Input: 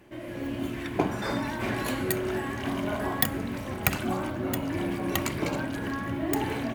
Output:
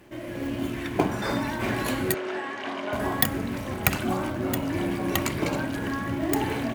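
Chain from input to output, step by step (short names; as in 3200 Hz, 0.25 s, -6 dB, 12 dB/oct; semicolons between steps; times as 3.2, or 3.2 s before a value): in parallel at -10 dB: companded quantiser 4-bit; 2.14–2.93 on the sum: BPF 420–4800 Hz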